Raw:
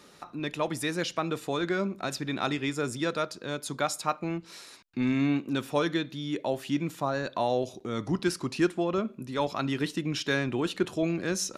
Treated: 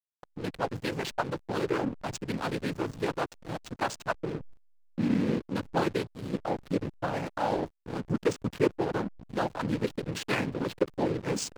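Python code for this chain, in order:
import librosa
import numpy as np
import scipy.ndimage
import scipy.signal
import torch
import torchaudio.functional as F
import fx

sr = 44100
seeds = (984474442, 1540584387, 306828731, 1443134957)

y = fx.noise_vocoder(x, sr, seeds[0], bands=8)
y = fx.backlash(y, sr, play_db=-29.5)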